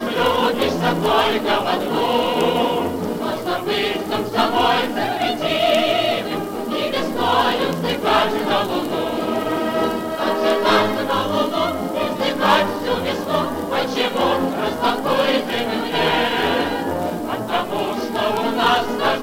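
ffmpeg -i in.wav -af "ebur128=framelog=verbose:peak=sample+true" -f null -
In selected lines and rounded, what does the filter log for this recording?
Integrated loudness:
  I:         -19.4 LUFS
  Threshold: -29.4 LUFS
Loudness range:
  LRA:         1.2 LU
  Threshold: -39.4 LUFS
  LRA low:   -20.0 LUFS
  LRA high:  -18.8 LUFS
Sample peak:
  Peak:       -1.1 dBFS
True peak:
  Peak:       -1.1 dBFS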